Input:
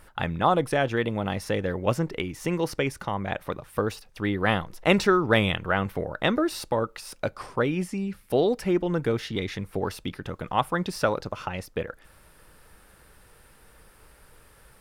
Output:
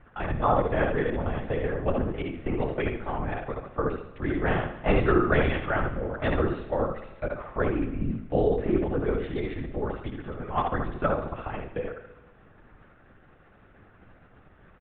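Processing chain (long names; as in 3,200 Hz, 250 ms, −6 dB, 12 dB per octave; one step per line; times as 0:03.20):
on a send: repeating echo 71 ms, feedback 34%, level −4 dB
on the sum: linear-prediction vocoder at 8 kHz whisper
low-pass filter 1,900 Hz 12 dB per octave
notch filter 970 Hz, Q 16
four-comb reverb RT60 1.4 s, combs from 25 ms, DRR 13.5 dB
level −2 dB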